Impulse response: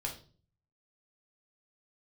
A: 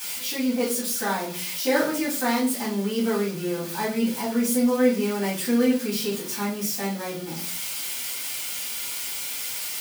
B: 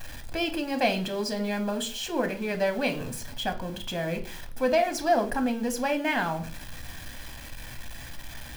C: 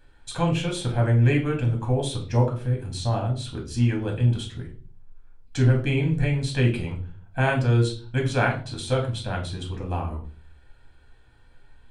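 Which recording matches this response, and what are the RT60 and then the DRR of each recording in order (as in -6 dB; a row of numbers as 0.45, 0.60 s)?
C; 0.40, 0.40, 0.40 s; -9.5, 6.0, -0.5 dB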